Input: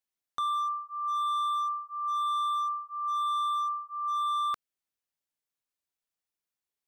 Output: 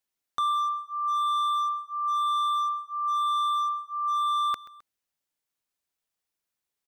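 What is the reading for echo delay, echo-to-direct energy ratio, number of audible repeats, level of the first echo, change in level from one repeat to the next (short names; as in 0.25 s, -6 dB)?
0.131 s, -18.0 dB, 2, -19.0 dB, -5.5 dB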